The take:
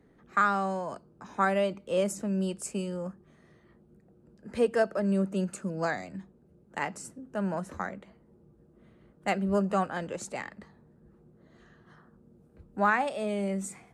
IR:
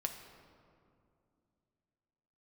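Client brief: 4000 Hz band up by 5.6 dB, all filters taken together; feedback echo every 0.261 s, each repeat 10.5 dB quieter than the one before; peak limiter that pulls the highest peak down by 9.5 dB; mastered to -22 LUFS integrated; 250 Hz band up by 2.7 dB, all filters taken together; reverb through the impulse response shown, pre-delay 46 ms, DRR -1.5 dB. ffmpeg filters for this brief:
-filter_complex "[0:a]equalizer=f=250:t=o:g=4,equalizer=f=4k:t=o:g=8,alimiter=limit=-21.5dB:level=0:latency=1,aecho=1:1:261|522|783:0.299|0.0896|0.0269,asplit=2[a][b];[1:a]atrim=start_sample=2205,adelay=46[c];[b][c]afir=irnorm=-1:irlink=0,volume=1dB[d];[a][d]amix=inputs=2:normalize=0,volume=5dB"

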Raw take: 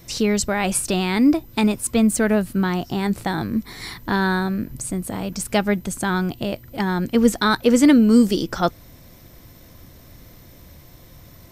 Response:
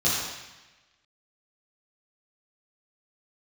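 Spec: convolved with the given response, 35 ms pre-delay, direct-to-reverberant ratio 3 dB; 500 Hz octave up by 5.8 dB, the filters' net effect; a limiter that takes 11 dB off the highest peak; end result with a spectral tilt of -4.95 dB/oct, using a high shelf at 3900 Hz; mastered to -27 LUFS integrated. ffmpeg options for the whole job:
-filter_complex "[0:a]equalizer=f=500:t=o:g=7,highshelf=f=3.9k:g=3,alimiter=limit=-10dB:level=0:latency=1,asplit=2[a][b];[1:a]atrim=start_sample=2205,adelay=35[c];[b][c]afir=irnorm=-1:irlink=0,volume=-16.5dB[d];[a][d]amix=inputs=2:normalize=0,volume=-8.5dB"

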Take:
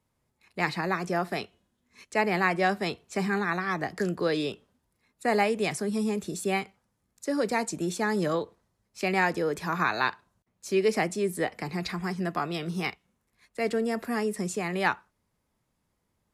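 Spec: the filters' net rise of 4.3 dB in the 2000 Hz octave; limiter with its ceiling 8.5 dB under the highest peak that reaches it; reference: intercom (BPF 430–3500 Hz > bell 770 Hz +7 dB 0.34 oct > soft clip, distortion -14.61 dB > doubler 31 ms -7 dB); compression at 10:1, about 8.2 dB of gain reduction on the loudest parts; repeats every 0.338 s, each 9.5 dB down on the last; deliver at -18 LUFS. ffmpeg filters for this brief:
-filter_complex "[0:a]equalizer=f=2k:t=o:g=5.5,acompressor=threshold=-25dB:ratio=10,alimiter=limit=-21.5dB:level=0:latency=1,highpass=430,lowpass=3.5k,equalizer=f=770:t=o:w=0.34:g=7,aecho=1:1:338|676|1014|1352:0.335|0.111|0.0365|0.012,asoftclip=threshold=-27dB,asplit=2[a][b];[b]adelay=31,volume=-7dB[c];[a][c]amix=inputs=2:normalize=0,volume=17.5dB"

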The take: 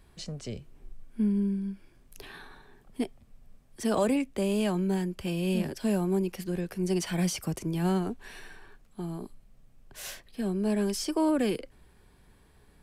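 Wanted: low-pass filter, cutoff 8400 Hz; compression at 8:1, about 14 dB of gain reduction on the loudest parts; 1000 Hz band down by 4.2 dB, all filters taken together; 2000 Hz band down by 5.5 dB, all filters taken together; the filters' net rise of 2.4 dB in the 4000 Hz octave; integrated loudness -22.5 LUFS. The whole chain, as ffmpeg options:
-af "lowpass=8.4k,equalizer=f=1k:t=o:g=-4,equalizer=f=2k:t=o:g=-8.5,equalizer=f=4k:t=o:g=6.5,acompressor=threshold=-38dB:ratio=8,volume=20.5dB"

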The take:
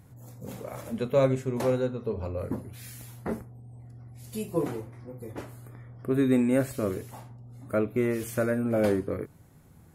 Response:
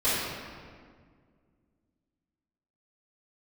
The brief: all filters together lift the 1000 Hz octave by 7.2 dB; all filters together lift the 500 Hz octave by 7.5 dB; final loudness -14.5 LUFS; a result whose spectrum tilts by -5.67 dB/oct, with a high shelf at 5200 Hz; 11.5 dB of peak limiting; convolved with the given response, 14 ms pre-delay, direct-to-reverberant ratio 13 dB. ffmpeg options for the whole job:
-filter_complex "[0:a]equalizer=f=500:t=o:g=7,equalizer=f=1k:t=o:g=7,highshelf=f=5.2k:g=6,alimiter=limit=-16.5dB:level=0:latency=1,asplit=2[a][b];[1:a]atrim=start_sample=2205,adelay=14[c];[b][c]afir=irnorm=-1:irlink=0,volume=-27dB[d];[a][d]amix=inputs=2:normalize=0,volume=13dB"

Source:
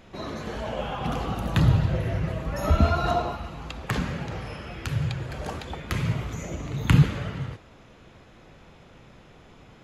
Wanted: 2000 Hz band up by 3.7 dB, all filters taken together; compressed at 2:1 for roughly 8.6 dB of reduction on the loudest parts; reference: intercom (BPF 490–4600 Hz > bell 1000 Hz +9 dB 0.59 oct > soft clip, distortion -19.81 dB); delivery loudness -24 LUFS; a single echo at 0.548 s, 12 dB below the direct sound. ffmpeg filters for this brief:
-af "equalizer=f=2k:t=o:g=3.5,acompressor=threshold=-29dB:ratio=2,highpass=490,lowpass=4.6k,equalizer=f=1k:t=o:w=0.59:g=9,aecho=1:1:548:0.251,asoftclip=threshold=-17dB,volume=10dB"

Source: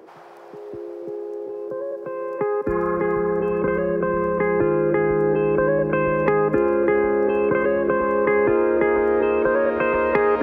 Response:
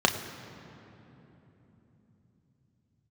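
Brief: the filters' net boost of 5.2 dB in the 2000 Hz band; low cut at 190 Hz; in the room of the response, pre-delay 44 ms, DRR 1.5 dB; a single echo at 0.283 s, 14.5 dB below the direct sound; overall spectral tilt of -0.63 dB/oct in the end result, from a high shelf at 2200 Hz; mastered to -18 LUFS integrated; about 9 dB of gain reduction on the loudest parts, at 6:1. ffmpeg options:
-filter_complex "[0:a]highpass=190,equalizer=f=2k:t=o:g=4.5,highshelf=f=2.2k:g=4.5,acompressor=threshold=-24dB:ratio=6,aecho=1:1:283:0.188,asplit=2[a][b];[1:a]atrim=start_sample=2205,adelay=44[c];[b][c]afir=irnorm=-1:irlink=0,volume=-16.5dB[d];[a][d]amix=inputs=2:normalize=0,volume=5.5dB"

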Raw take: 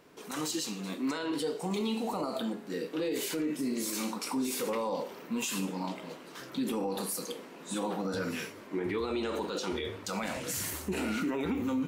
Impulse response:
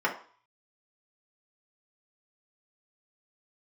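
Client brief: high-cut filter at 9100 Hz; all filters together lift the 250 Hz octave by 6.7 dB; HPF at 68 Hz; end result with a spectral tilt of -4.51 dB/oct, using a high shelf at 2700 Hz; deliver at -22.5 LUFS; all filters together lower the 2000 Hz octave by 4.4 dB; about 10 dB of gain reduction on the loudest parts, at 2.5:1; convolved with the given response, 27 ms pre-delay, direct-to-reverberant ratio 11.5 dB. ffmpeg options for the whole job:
-filter_complex "[0:a]highpass=68,lowpass=9.1k,equalizer=f=250:t=o:g=8,equalizer=f=2k:t=o:g=-8,highshelf=f=2.7k:g=3.5,acompressor=threshold=-37dB:ratio=2.5,asplit=2[a][b];[1:a]atrim=start_sample=2205,adelay=27[c];[b][c]afir=irnorm=-1:irlink=0,volume=-23.5dB[d];[a][d]amix=inputs=2:normalize=0,volume=15dB"

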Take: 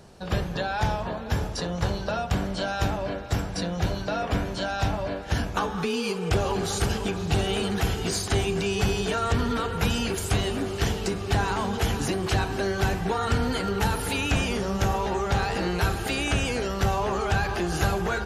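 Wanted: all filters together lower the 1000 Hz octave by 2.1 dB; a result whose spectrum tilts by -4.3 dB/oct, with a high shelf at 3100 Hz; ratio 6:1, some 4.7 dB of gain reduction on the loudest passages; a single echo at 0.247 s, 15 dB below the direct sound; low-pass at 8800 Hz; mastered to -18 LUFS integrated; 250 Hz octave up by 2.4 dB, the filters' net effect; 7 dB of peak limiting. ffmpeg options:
-af "lowpass=8.8k,equalizer=f=250:t=o:g=3.5,equalizer=f=1k:t=o:g=-4,highshelf=f=3.1k:g=7.5,acompressor=threshold=-23dB:ratio=6,alimiter=limit=-19.5dB:level=0:latency=1,aecho=1:1:247:0.178,volume=11dB"

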